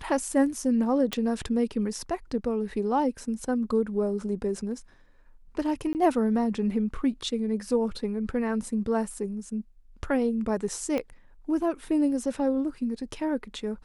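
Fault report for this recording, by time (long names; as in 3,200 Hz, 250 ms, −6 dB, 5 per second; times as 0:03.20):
0:01.13: click −13 dBFS
0:05.93–0:05.95: drop-out 19 ms
0:10.98: click −17 dBFS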